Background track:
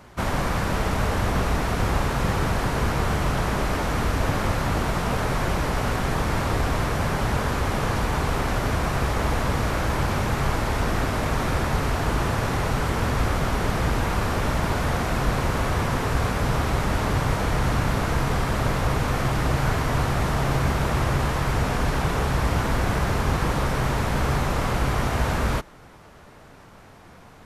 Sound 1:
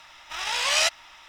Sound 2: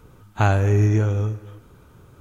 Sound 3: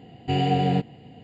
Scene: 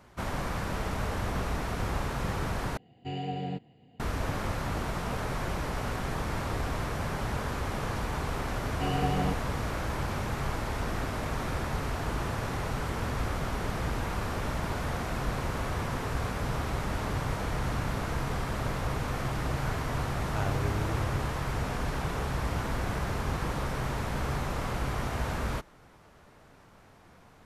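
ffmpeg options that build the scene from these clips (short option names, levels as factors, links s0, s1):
-filter_complex "[3:a]asplit=2[s0][s1];[0:a]volume=0.376,asplit=2[s2][s3];[s2]atrim=end=2.774[s4];[s0]atrim=end=1.23,asetpts=PTS-STARTPTS,volume=0.237[s5];[s3]atrim=start=3.996[s6];[s1]atrim=end=1.23,asetpts=PTS-STARTPTS,volume=0.398,afade=t=in:d=0.004:c=hsin,afade=t=out:st=1.226:d=0.004:c=hsin,adelay=8520[s7];[2:a]atrim=end=2.2,asetpts=PTS-STARTPTS,volume=0.168,afade=t=in:d=0.004:c=hsin,afade=t=out:st=2.196:d=0.004:c=hsin,adelay=19950[s8];[s4][s5]acrossfade=d=0.004:c1=hsin:c2=hsin[s9];[s9][s6]acrossfade=d=0.004:c1=hsin:c2=hsin[s10];[s10][s7][s8]amix=inputs=3:normalize=0"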